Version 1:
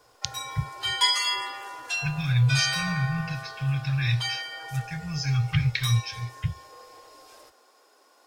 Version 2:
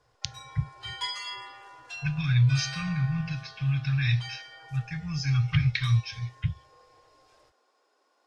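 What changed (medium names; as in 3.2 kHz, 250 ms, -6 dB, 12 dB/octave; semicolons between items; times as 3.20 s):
background -9.5 dB; master: add distance through air 64 m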